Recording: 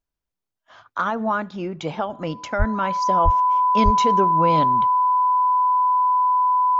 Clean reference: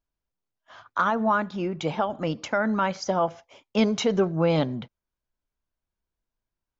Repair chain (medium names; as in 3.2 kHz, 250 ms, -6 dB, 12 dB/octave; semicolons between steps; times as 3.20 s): band-stop 1 kHz, Q 30; 2.58–2.70 s: high-pass 140 Hz 24 dB/octave; 3.24–3.36 s: high-pass 140 Hz 24 dB/octave; 3.84–3.96 s: high-pass 140 Hz 24 dB/octave